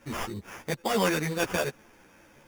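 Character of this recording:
aliases and images of a low sample rate 4,100 Hz, jitter 0%
a shimmering, thickened sound

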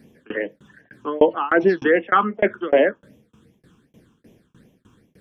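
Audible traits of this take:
tremolo saw down 3.3 Hz, depth 100%
phaser sweep stages 8, 2.6 Hz, lowest notch 570–1,400 Hz

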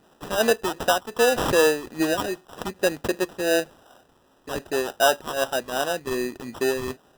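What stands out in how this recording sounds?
phaser sweep stages 2, 2.6 Hz, lowest notch 640–3,900 Hz
aliases and images of a low sample rate 2,200 Hz, jitter 0%

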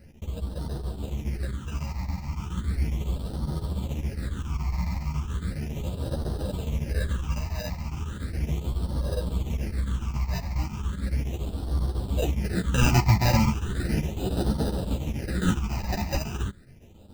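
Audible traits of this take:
aliases and images of a low sample rate 1,100 Hz, jitter 0%
phaser sweep stages 8, 0.36 Hz, lowest notch 430–2,300 Hz
chopped level 7.2 Hz, depth 60%, duty 80%
a shimmering, thickened sound

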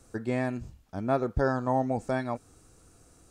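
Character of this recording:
background noise floor −60 dBFS
spectral slope −4.5 dB per octave

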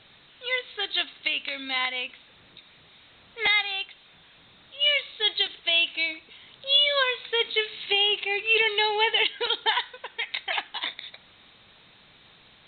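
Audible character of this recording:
background noise floor −55 dBFS
spectral slope +4.0 dB per octave

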